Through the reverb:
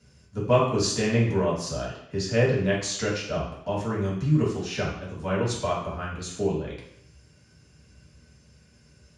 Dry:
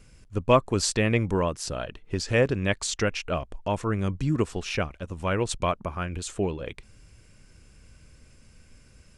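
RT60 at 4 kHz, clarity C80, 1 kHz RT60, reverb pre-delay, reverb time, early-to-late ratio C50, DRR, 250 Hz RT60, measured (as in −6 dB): 0.70 s, 7.5 dB, 0.70 s, 3 ms, 0.70 s, 3.5 dB, −6.5 dB, 0.70 s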